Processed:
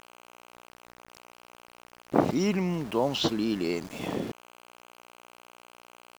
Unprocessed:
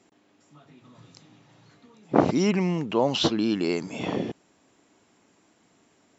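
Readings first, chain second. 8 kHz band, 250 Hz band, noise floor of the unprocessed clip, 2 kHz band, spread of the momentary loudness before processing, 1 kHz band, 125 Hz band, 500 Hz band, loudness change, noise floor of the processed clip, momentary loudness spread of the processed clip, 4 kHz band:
can't be measured, −3.5 dB, −64 dBFS, −3.0 dB, 8 LU, −3.5 dB, −3.5 dB, −3.5 dB, −3.5 dB, −57 dBFS, 8 LU, −3.5 dB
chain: hum with harmonics 60 Hz, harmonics 24, −48 dBFS −2 dB per octave
centre clipping without the shift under −36.5 dBFS
level −3.5 dB

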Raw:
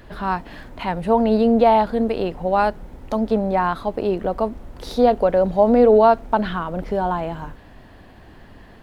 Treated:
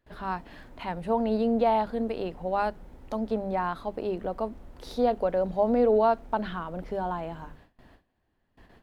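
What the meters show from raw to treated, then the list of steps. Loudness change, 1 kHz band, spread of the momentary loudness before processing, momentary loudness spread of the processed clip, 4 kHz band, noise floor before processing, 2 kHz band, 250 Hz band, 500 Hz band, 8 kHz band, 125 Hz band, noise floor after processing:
−9.0 dB, −9.0 dB, 13 LU, 13 LU, −9.0 dB, −45 dBFS, −9.0 dB, −9.0 dB, −9.0 dB, can't be measured, −9.5 dB, −74 dBFS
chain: mains-hum notches 50/100/150/200 Hz
noise gate with hold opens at −34 dBFS
level −9 dB

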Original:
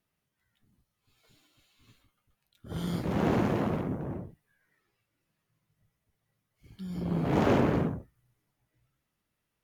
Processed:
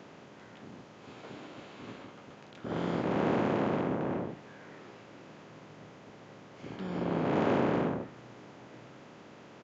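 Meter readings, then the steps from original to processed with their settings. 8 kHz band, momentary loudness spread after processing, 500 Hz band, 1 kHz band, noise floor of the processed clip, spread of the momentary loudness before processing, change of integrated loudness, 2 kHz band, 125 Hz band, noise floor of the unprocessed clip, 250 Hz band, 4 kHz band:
can't be measured, 22 LU, +0.5 dB, +1.0 dB, −53 dBFS, 17 LU, −2.0 dB, +0.5 dB, −5.5 dB, −83 dBFS, −1.5 dB, −0.5 dB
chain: compressor on every frequency bin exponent 0.4
Bessel high-pass filter 190 Hz, order 2
dynamic equaliser 6,000 Hz, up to −7 dB, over −56 dBFS, Q 0.98
downsampling to 16,000 Hz
level −4.5 dB

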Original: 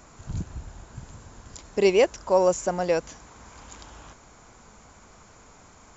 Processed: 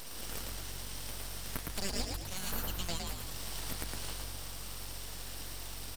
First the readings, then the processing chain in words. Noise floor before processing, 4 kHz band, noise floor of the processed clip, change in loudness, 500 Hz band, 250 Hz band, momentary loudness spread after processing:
−52 dBFS, +0.5 dB, −43 dBFS, −15.5 dB, −24.5 dB, −13.0 dB, 6 LU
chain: elliptic high-pass filter 1,400 Hz
comb filter 4.4 ms, depth 32%
downward compressor 5 to 1, threshold −49 dBFS, peak gain reduction 20.5 dB
full-wave rectification
echo with shifted repeats 111 ms, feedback 43%, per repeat +46 Hz, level −3 dB
level +14 dB

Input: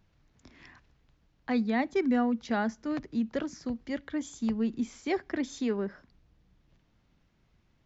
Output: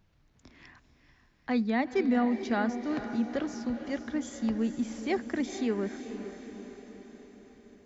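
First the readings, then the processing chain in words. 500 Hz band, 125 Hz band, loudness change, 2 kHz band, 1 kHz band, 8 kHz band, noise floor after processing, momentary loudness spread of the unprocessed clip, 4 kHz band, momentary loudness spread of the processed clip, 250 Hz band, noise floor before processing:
+0.5 dB, +0.5 dB, +0.5 dB, +0.5 dB, +0.5 dB, can't be measured, −66 dBFS, 9 LU, +0.5 dB, 18 LU, +0.5 dB, −69 dBFS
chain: feedback delay with all-pass diffusion 463 ms, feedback 58%, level −10 dB

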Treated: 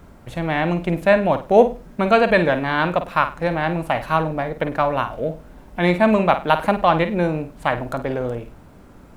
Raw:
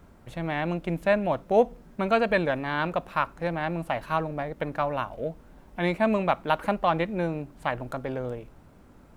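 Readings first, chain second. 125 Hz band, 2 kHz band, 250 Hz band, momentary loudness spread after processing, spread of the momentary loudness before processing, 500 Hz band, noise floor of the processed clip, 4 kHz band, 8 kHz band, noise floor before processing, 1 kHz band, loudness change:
+8.0 dB, +8.0 dB, +8.0 dB, 10 LU, 10 LU, +8.0 dB, −45 dBFS, +8.0 dB, can't be measured, −54 dBFS, +8.0 dB, +8.0 dB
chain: flutter between parallel walls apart 8.7 metres, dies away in 0.29 s
level +7.5 dB

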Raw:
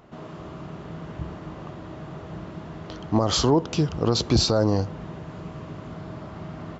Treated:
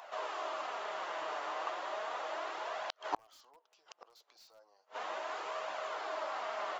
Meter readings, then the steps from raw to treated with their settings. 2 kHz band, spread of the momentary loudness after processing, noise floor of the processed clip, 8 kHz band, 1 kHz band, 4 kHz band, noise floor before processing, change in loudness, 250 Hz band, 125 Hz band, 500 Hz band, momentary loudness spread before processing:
0.0 dB, 3 LU, −73 dBFS, can't be measured, −3.5 dB, −17.0 dB, −40 dBFS, −16.5 dB, −31.5 dB, below −40 dB, −13.0 dB, 18 LU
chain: high-pass filter 630 Hz 24 dB per octave
in parallel at −3.5 dB: wrap-around overflow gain 18.5 dB
on the sum: flanger 0.35 Hz, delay 1.1 ms, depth 6 ms, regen −28%
gate with flip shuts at −26 dBFS, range −41 dB
level +5.5 dB

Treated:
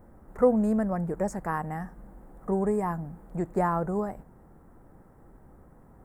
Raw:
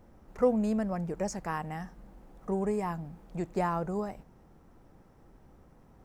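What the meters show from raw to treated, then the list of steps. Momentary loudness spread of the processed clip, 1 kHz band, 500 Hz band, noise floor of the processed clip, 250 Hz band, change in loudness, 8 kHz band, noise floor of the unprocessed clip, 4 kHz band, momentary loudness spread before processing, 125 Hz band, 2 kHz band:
14 LU, +4.0 dB, +4.0 dB, −55 dBFS, +4.0 dB, +4.0 dB, −2.5 dB, −59 dBFS, can't be measured, 14 LU, +4.0 dB, +2.5 dB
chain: flat-topped bell 3,900 Hz −14 dB
level +4 dB

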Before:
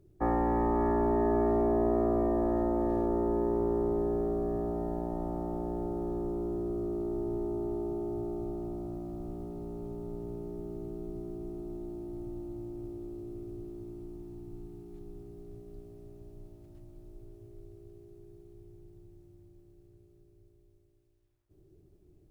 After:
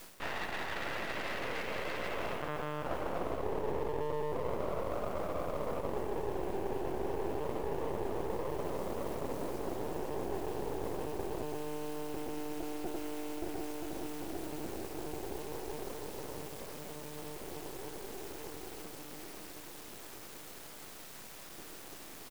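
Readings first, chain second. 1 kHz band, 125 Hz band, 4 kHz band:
−3.0 dB, −6.0 dB, can't be measured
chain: samples sorted by size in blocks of 16 samples
repeating echo 294 ms, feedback 15%, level −15 dB
one-pitch LPC vocoder at 8 kHz 150 Hz
band-pass filter sweep 1,600 Hz → 620 Hz, 0:01.94–0:03.57
in parallel at −8.5 dB: bit-depth reduction 8 bits, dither triangular
on the sum: parametric band 350 Hz +3.5 dB 2.6 octaves
reversed playback
downward compressor 5 to 1, threshold −46 dBFS, peak gain reduction 15.5 dB
reversed playback
high-shelf EQ 2,000 Hz −8 dB
half-wave rectification
hum removal 124.8 Hz, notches 35
level +16.5 dB

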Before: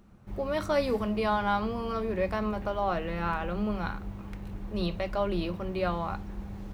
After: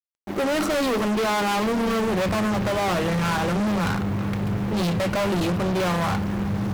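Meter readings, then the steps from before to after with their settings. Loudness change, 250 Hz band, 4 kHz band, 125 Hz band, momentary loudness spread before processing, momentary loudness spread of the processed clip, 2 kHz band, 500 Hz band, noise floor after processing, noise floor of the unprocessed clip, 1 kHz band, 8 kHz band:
+7.5 dB, +9.5 dB, +11.0 dB, +11.0 dB, 13 LU, 4 LU, +9.5 dB, +6.0 dB, −29 dBFS, −42 dBFS, +6.0 dB, can't be measured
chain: high-pass filter sweep 280 Hz → 120 Hz, 0:01.68–0:02.22
fuzz pedal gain 40 dB, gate −48 dBFS
level −8 dB

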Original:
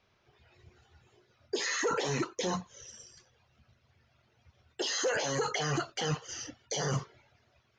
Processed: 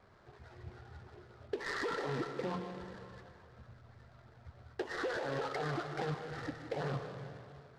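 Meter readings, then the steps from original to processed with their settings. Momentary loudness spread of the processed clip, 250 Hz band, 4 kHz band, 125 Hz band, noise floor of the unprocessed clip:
20 LU, −4.0 dB, −13.0 dB, −4.5 dB, −71 dBFS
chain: Butterworth low-pass 1,900 Hz 36 dB per octave
downward compressor 5 to 1, threshold −46 dBFS, peak gain reduction 17 dB
comb and all-pass reverb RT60 2.1 s, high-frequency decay 0.9×, pre-delay 80 ms, DRR 5.5 dB
short delay modulated by noise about 2,400 Hz, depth 0.038 ms
level +9 dB

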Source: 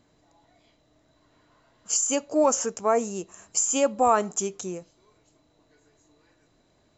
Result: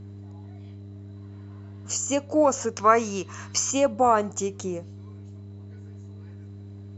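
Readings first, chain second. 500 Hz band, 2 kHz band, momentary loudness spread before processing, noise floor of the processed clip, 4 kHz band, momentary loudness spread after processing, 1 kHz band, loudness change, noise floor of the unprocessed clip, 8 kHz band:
+1.0 dB, +4.0 dB, 14 LU, −41 dBFS, +1.5 dB, 22 LU, +2.5 dB, +0.5 dB, −65 dBFS, can't be measured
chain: gain on a spectral selection 0:02.77–0:03.71, 930–6,600 Hz +10 dB
harmonic generator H 2 −27 dB, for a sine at −5 dBFS
high-shelf EQ 5,100 Hz −10.5 dB
hum with harmonics 100 Hz, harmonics 4, −46 dBFS −8 dB per octave
in parallel at −2.5 dB: downward compressor, threshold −35 dBFS, peak gain reduction 20.5 dB

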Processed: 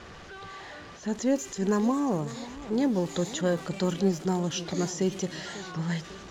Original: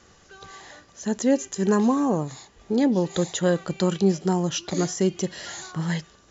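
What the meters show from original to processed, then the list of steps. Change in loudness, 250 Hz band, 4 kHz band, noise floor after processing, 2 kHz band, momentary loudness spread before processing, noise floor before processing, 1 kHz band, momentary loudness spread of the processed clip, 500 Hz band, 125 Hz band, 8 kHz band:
−5.0 dB, −4.5 dB, −3.5 dB, −46 dBFS, −3.0 dB, 14 LU, −56 dBFS, −4.0 dB, 16 LU, −4.5 dB, −4.0 dB, can't be measured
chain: converter with a step at zero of −34 dBFS
low-pass that shuts in the quiet parts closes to 3,000 Hz, open at −16.5 dBFS
feedback echo with a swinging delay time 546 ms, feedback 57%, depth 192 cents, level −16 dB
level −5.5 dB

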